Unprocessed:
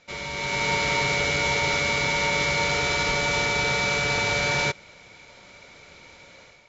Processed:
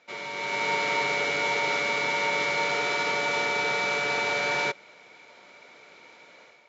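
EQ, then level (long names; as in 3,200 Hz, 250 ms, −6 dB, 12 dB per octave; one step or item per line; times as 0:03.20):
high-pass filter 310 Hz 12 dB per octave
high-shelf EQ 4,100 Hz −11 dB
notch filter 550 Hz, Q 18
0.0 dB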